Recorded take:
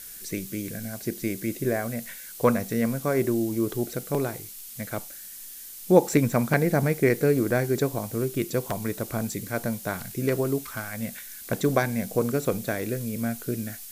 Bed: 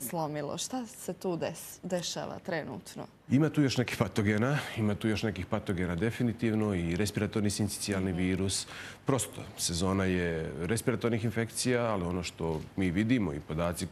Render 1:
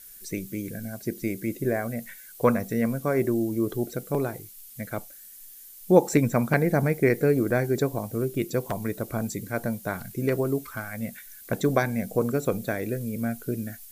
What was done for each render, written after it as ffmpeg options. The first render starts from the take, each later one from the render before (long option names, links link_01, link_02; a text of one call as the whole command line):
ffmpeg -i in.wav -af "afftdn=noise_reduction=9:noise_floor=-42" out.wav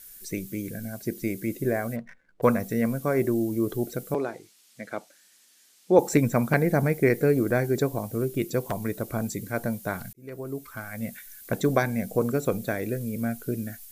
ffmpeg -i in.wav -filter_complex "[0:a]asplit=3[link_01][link_02][link_03];[link_01]afade=type=out:start_time=1.95:duration=0.02[link_04];[link_02]adynamicsmooth=sensitivity=7.5:basefreq=680,afade=type=in:start_time=1.95:duration=0.02,afade=type=out:start_time=2.42:duration=0.02[link_05];[link_03]afade=type=in:start_time=2.42:duration=0.02[link_06];[link_04][link_05][link_06]amix=inputs=3:normalize=0,asettb=1/sr,asplit=3[link_07][link_08][link_09];[link_07]atrim=end=4.144[link_10];[link_08]atrim=start=4.14:end=5.99,asetpts=PTS-STARTPTS,afade=type=in:duration=0.004:curve=qsin,afade=type=out:start_time=1.846:duration=0.004:curve=qsin,highpass=260,lowpass=5800[link_11];[link_09]atrim=start=5.986[link_12];[link_10][link_11]acrossfade=duration=0.004:curve1=hsin:curve2=qsin[link_13];[link_13][link_12]acrossfade=duration=0.004:curve1=qsin:curve2=hsin,asplit=2[link_14][link_15];[link_14]atrim=end=10.13,asetpts=PTS-STARTPTS,afade=type=out:start_time=10.126:duration=0.004:curve=hsin[link_16];[link_15]atrim=start=10.13,asetpts=PTS-STARTPTS,afade=type=in:duration=0.94[link_17];[link_16][link_17]concat=n=2:v=0:a=1" out.wav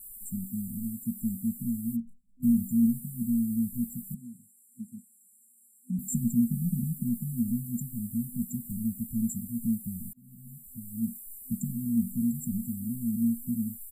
ffmpeg -i in.wav -af "aecho=1:1:3.9:0.62,afftfilt=real='re*(1-between(b*sr/4096,250,7200))':imag='im*(1-between(b*sr/4096,250,7200))':win_size=4096:overlap=0.75" out.wav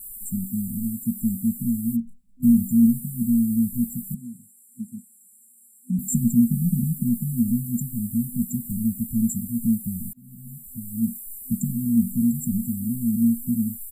ffmpeg -i in.wav -af "volume=7dB" out.wav